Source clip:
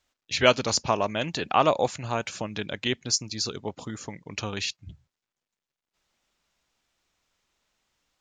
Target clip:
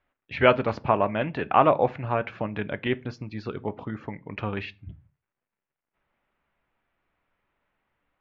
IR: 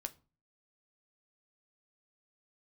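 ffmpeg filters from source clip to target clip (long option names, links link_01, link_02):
-filter_complex "[0:a]lowpass=frequency=2300:width=0.5412,lowpass=frequency=2300:width=1.3066,asplit=2[link_01][link_02];[1:a]atrim=start_sample=2205,afade=type=out:start_time=0.29:duration=0.01,atrim=end_sample=13230[link_03];[link_02][link_03]afir=irnorm=-1:irlink=0,volume=5.5dB[link_04];[link_01][link_04]amix=inputs=2:normalize=0,volume=-5dB"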